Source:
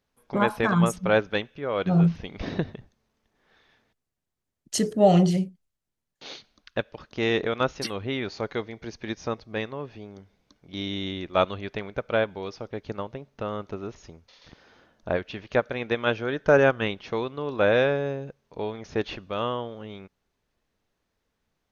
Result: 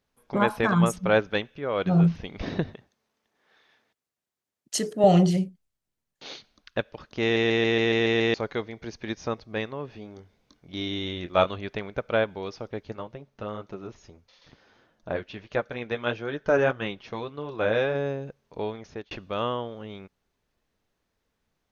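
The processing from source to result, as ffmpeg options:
-filter_complex "[0:a]asettb=1/sr,asplit=3[a][b][c];[a]atrim=end=2.744[d];[b]atrim=start=2.74:end=5.04,asetpts=PTS-STARTPTS,afade=t=in:d=0.004:c=qsin,afade=t=out:st=2.296:d=0.004:c=qsin,highpass=f=380:p=1[e];[c]atrim=start=5.036[f];[d][e]acrossfade=d=0.004:c1=hsin:c2=qsin[g];[g][f]acrossfade=d=0.004:c1=qsin:c2=hsin,asettb=1/sr,asplit=3[h][i][j];[h]atrim=end=9.864[k];[i]atrim=start=9.86:end=11.56,asetpts=PTS-STARTPTS,afade=t=in:d=0.004:c=qsin,afade=t=out:st=1.696:d=0.004:c=qsin,asplit=2[l][m];[m]adelay=23,volume=-8.5dB[n];[l][n]amix=inputs=2:normalize=0,atrim=end_sample=74970[o];[j]atrim=start=11.556[p];[k][o]acrossfade=d=0.004:c1=hsin:c2=qsin[q];[q][p]acrossfade=d=0.004:c1=qsin:c2=hsin,asplit=3[r][s][t];[r]afade=t=out:st=12.83:d=0.02[u];[s]flanger=delay=5.6:depth=4.5:regen=-40:speed=1.6:shape=sinusoidal,afade=t=in:st=12.83:d=0.02,afade=t=out:st=17.94:d=0.02[v];[t]afade=t=in:st=17.94:d=0.02[w];[u][v][w]amix=inputs=3:normalize=0,asplit=10[x][y][z][aa][ab][ac][ad][ae][af][ag];[x]atrim=end=7.362[ah];[y]atrim=start=7.218:end=7.362[ai];[z]atrim=start=7.218:end=7.362[aj];[aa]atrim=start=7.218:end=7.362[ak];[ab]atrim=start=7.218:end=7.362[al];[ac]atrim=start=7.218:end=7.362[am];[ad]atrim=start=7.218:end=7.362[an];[ae]atrim=start=7.218:end=7.362[ao];[af]atrim=start=8.338:end=19.11,asetpts=PTS-STARTPTS,afade=t=out:st=10.352:d=0.42[ap];[ag]atrim=start=19.11,asetpts=PTS-STARTPTS,afade=t=in:d=0.004:c=hsin[aq];[ah][ai]acrossfade=d=0.004:c1=hsin:c2=hsin[ar];[ar][aj]acrossfade=d=0.004:c1=hsin:c2=hsin[as];[as][ak]acrossfade=d=0.004:c1=hsin:c2=hsin[at];[at][al]acrossfade=d=0.004:c1=hsin:c2=hsin[au];[au][am]acrossfade=d=0.004:c1=hsin:c2=hsin[av];[av][an]acrossfade=d=0.004:c1=hsin:c2=hsin[aw];[aw][ao]acrossfade=d=0.004:c1=hsin:c2=hsin[ax];[ap][aq]concat=n=2:v=0:a=1[ay];[ax][ay]acrossfade=d=0.004:c1=hsin:c2=hsin"

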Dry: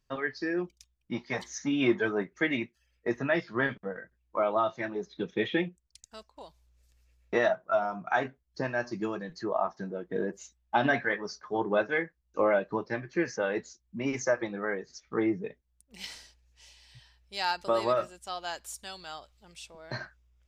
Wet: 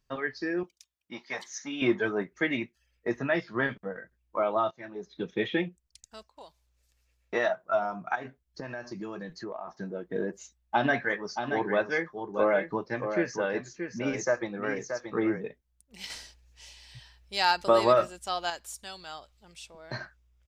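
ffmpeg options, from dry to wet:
-filter_complex "[0:a]asettb=1/sr,asplit=3[a][b][c];[a]atrim=end=0.634[d];[b]atrim=start=0.63:end=1.82,asetpts=PTS-STARTPTS,afade=t=in:d=0.004:c=qsin,afade=t=out:st=1.186:d=0.004:c=qsin,highpass=f=720:p=1[e];[c]atrim=start=1.816[f];[d][e]acrossfade=d=0.004:c1=hsin:c2=qsin[g];[g][f]acrossfade=d=0.004:c1=qsin:c2=hsin,asettb=1/sr,asplit=3[h][i][j];[h]atrim=end=6.274[k];[i]atrim=start=6.27:end=7.64,asetpts=PTS-STARTPTS,afade=t=in:d=0.004:c=qsin,afade=t=out:st=1.366:d=0.004:c=qsin,lowshelf=f=350:g=-7[l];[j]atrim=start=7.636[m];[k][l]acrossfade=d=0.004:c1=hsin:c2=qsin[n];[n][m]acrossfade=d=0.004:c1=qsin:c2=hsin,asplit=3[o][p][q];[o]afade=t=out:st=8.14:d=0.02[r];[p]acompressor=threshold=-33dB:ratio=12:attack=3.2:release=140:knee=1:detection=peak,afade=t=in:st=8.14:d=0.02,afade=t=out:st=9.67:d=0.02[s];[q]afade=t=in:st=9.67:d=0.02[t];[r][s][t]amix=inputs=3:normalize=0,asplit=3[u][v][w];[u]afade=t=out:st=11.09:d=0.02[x];[v]aecho=1:1:628:0.422,afade=t=in:st=11.09:d=0.02,afade=t=out:st=15.42:d=0.02[y];[w]afade=t=in:st=15.42:d=0.02[z];[x][y][z]amix=inputs=3:normalize=0,asplit=4[aa][ab][ac][ad];[aa]atrim=end=4.71,asetpts=PTS-STARTPTS,afade=t=out:st=4.706:d=0.004:c=hsin:silence=0.16788[ae];[ab]atrim=start=4.71:end=16.102,asetpts=PTS-STARTPTS,afade=t=in:d=0.55:silence=0.16788[af];[ac]atrim=start=16.098:end=18.502,asetpts=PTS-STARTPTS,volume=5.5dB[ag];[ad]atrim=start=18.498[ah];[ae][af]concat=n=2:v=0:a=1[ai];[ai][ag]acrossfade=d=0.004:c1=hsin:c2=hsin[aj];[aj][ah]acrossfade=d=0.004:c1=hsin:c2=hsin"

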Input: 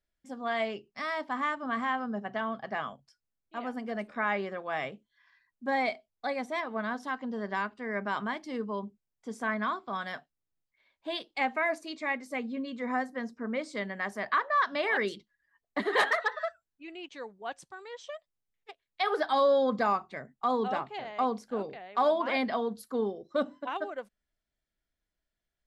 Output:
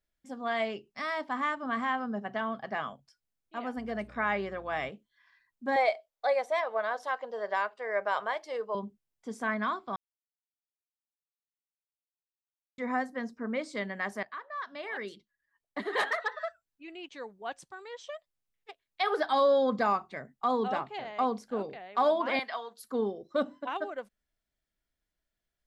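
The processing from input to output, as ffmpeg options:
-filter_complex "[0:a]asettb=1/sr,asplit=3[a][b][c];[a]atrim=end=3.774[d];[b]atrim=start=3.77:end=4.9,asetpts=PTS-STARTPTS,afade=t=in:d=0.004:c=qsin,afade=t=out:st=1.126:d=0.004:c=qsin,aeval=exprs='val(0)+0.00224*(sin(2*PI*60*n/s)+sin(2*PI*2*60*n/s)/2+sin(2*PI*3*60*n/s)/3+sin(2*PI*4*60*n/s)/4+sin(2*PI*5*60*n/s)/5)':c=same[e];[c]atrim=start=4.896[f];[d][e]acrossfade=d=0.004:c1=hsin:c2=qsin[g];[g][f]acrossfade=d=0.004:c1=qsin:c2=hsin,asettb=1/sr,asplit=3[h][i][j];[h]atrim=end=5.764[k];[i]atrim=start=5.76:end=8.75,asetpts=PTS-STARTPTS,afade=t=in:d=0.004:c=qsin,afade=t=out:st=2.986:d=0.004:c=qsin,lowshelf=f=370:t=q:w=3:g=-13[l];[j]atrim=start=8.746[m];[k][l]acrossfade=d=0.004:c1=hsin:c2=qsin[n];[n][m]acrossfade=d=0.004:c1=qsin:c2=hsin,asettb=1/sr,asplit=3[o][p][q];[o]atrim=end=22.394[r];[p]atrim=start=22.39:end=22.84,asetpts=PTS-STARTPTS,afade=t=in:d=0.004:c=qsin,afade=t=out:st=0.446:d=0.004:c=qsin,highpass=940[s];[q]atrim=start=22.836[t];[r][s]acrossfade=d=0.004:c1=hsin:c2=qsin[u];[u][t]acrossfade=d=0.004:c1=qsin:c2=hsin,asplit=4[v][w][x][y];[v]atrim=end=9.96,asetpts=PTS-STARTPTS,afade=t=out:st=9.956:d=0.004:c=hsin[z];[w]atrim=start=9.96:end=12.78,asetpts=PTS-STARTPTS,volume=0[aa];[x]atrim=start=12.78:end=14.23,asetpts=PTS-STARTPTS,afade=t=in:d=0.004:c=hsin,afade=t=out:st=1.446:d=0.004:c=hsin:silence=0.158489[ab];[y]atrim=start=14.23,asetpts=PTS-STARTPTS,afade=t=in:d=3.13:silence=0.158489[ac];[z][aa][ab][ac]concat=n=4:v=0:a=1"

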